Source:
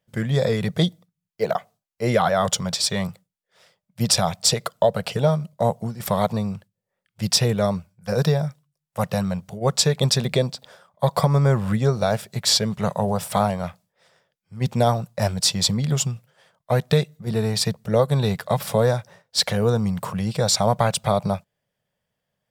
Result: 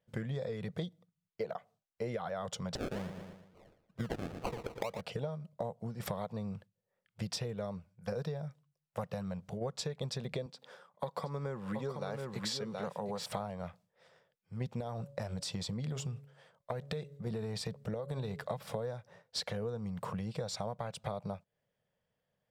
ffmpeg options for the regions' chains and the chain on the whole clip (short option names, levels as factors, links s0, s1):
-filter_complex "[0:a]asettb=1/sr,asplit=3[s0][s1][s2];[s0]atrim=end=2.754[s3];[s1]atrim=start=2.75:end=5.01,asetpts=PTS-STARTPTS,afade=t=in:d=0.004:c=qsin,afade=t=out:st=2.256:d=0.004:c=qsin,highpass=53,acrusher=samples=36:mix=1:aa=0.000001:lfo=1:lforange=21.6:lforate=2.2,aecho=1:1:115|230|345|460:0.251|0.108|0.0464|0.02,atrim=end_sample=99666[s4];[s2]atrim=start=5.006[s5];[s3][s4]acrossfade=d=0.004:c1=hsin:c2=qsin[s6];[s6][s5]acrossfade=d=0.004:c1=qsin:c2=hsin,asettb=1/sr,asplit=3[s7][s8][s9];[s7]atrim=end=10.464[s10];[s8]atrim=start=10.46:end=13.26,asetpts=PTS-STARTPTS,afade=t=in:d=0.004:c=qsin,afade=t=out:st=2.796:d=0.004:c=qsin,highpass=190,equalizer=f=650:w=5.9:g=-8.5,aecho=1:1:723:0.447,atrim=end_sample=123480[s11];[s9]atrim=start=13.256[s12];[s10][s11]acrossfade=d=0.004:c1=hsin:c2=qsin[s13];[s13][s12]acrossfade=d=0.004:c1=qsin:c2=hsin,asettb=1/sr,asplit=3[s14][s15][s16];[s14]atrim=end=14.804[s17];[s15]atrim=start=14.8:end=18.44,asetpts=PTS-STARTPTS,afade=t=in:d=0.004:c=qsin,afade=t=out:st=3.636:d=0.004:c=qsin,equalizer=f=8100:w=6.6:g=3,bandreject=f=140.4:t=h:w=4,bandreject=f=280.8:t=h:w=4,bandreject=f=421.2:t=h:w=4,bandreject=f=561.6:t=h:w=4,acompressor=threshold=0.0794:ratio=5:attack=3.2:release=140:knee=1:detection=peak[s18];[s16]atrim=start=18.436[s19];[s17][s18]acrossfade=d=0.004:c1=hsin:c2=qsin[s20];[s20][s19]acrossfade=d=0.004:c1=qsin:c2=hsin,lowpass=f=3500:p=1,equalizer=f=480:w=4.4:g=4.5,acompressor=threshold=0.0316:ratio=12,volume=0.596"